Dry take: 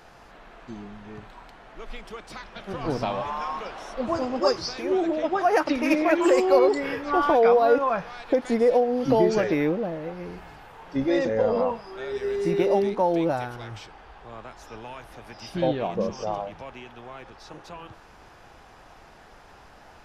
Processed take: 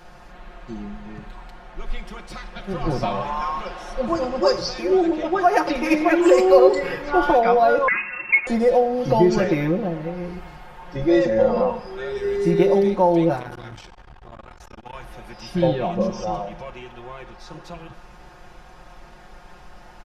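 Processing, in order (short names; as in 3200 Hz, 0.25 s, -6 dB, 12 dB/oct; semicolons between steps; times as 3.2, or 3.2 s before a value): low shelf 120 Hz +9 dB; comb 5.6 ms, depth 88%; Schroeder reverb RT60 0.98 s, combs from 32 ms, DRR 13 dB; 7.88–8.47 inverted band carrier 2700 Hz; 13.36–14.95 core saturation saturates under 650 Hz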